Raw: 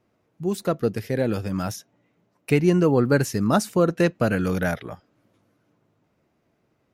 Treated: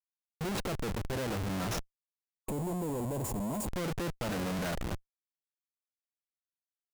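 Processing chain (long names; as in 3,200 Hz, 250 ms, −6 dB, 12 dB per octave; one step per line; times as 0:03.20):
comparator with hysteresis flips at −33 dBFS
gain on a spectral selection 0:02.48–0:03.67, 1,100–6,600 Hz −14 dB
level −9 dB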